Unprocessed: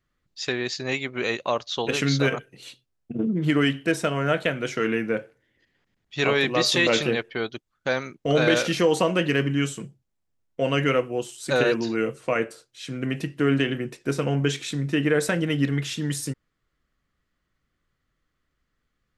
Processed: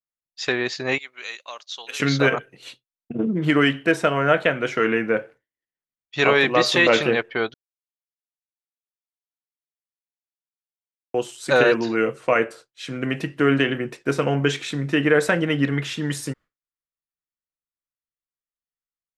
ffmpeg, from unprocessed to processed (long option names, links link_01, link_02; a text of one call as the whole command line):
ffmpeg -i in.wav -filter_complex "[0:a]asettb=1/sr,asplit=3[link_01][link_02][link_03];[link_01]atrim=end=0.984[link_04];[link_02]atrim=start=0.98:end=2,asetpts=PTS-STARTPTS,afade=type=in:duration=0.004:curve=qsin,afade=type=out:start_time=1.016:duration=0.004:curve=qsin,aderivative[link_05];[link_03]atrim=start=1.996[link_06];[link_04][link_05]acrossfade=duration=0.004:curve1=hsin:curve2=qsin[link_07];[link_07][link_06]acrossfade=duration=0.004:curve1=qsin:curve2=hsin,asplit=3[link_08][link_09][link_10];[link_08]atrim=end=7.54,asetpts=PTS-STARTPTS,afade=type=out:start_time=7.536:duration=0.004:curve=hsin[link_11];[link_09]atrim=start=7.54:end=11.14,asetpts=PTS-STARTPTS,volume=0[link_12];[link_10]atrim=start=11.14,asetpts=PTS-STARTPTS,afade=type=in:duration=0.004:curve=hsin[link_13];[link_11][link_12][link_13]concat=n=3:v=0:a=1,equalizer=frequency=1100:width=0.34:gain=8,agate=range=-33dB:threshold=-38dB:ratio=3:detection=peak,adynamicequalizer=threshold=0.02:dfrequency=3400:dqfactor=0.7:tfrequency=3400:tqfactor=0.7:attack=5:release=100:ratio=0.375:range=2.5:mode=cutabove:tftype=highshelf,volume=-1dB" out.wav